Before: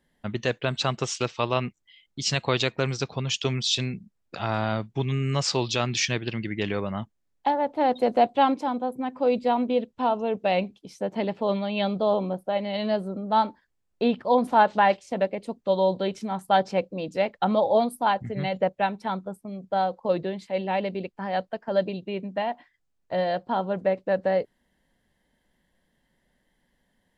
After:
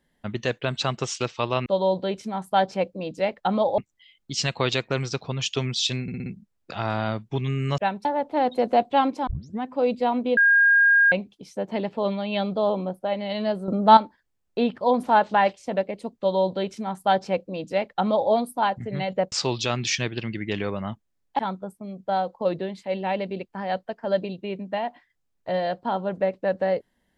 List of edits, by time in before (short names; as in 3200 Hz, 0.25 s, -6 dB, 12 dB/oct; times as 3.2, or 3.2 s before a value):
3.9 stutter 0.06 s, 5 plays
5.42–7.49 swap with 18.76–19.03
8.71 tape start 0.35 s
9.81–10.56 bleep 1620 Hz -13.5 dBFS
13.12–13.41 gain +8.5 dB
15.63–17.75 copy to 1.66